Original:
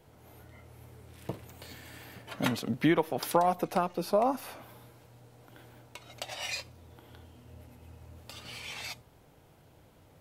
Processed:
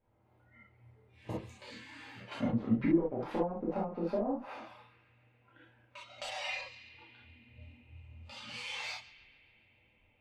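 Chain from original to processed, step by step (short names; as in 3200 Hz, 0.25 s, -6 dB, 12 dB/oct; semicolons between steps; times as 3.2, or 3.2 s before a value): one diode to ground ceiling -20 dBFS; spectral noise reduction 15 dB; narrowing echo 0.139 s, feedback 84%, band-pass 2500 Hz, level -17.5 dB; treble ducked by the level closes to 410 Hz, closed at -27 dBFS; non-linear reverb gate 90 ms flat, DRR -6.5 dB; low-pass opened by the level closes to 2000 Hz, open at -31.5 dBFS; gain -6 dB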